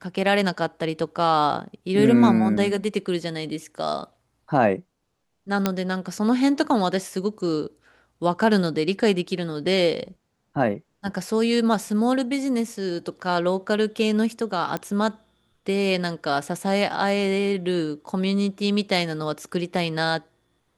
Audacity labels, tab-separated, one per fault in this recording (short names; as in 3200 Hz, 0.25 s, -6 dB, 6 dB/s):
5.660000	5.660000	pop -6 dBFS
14.770000	14.770000	pop -14 dBFS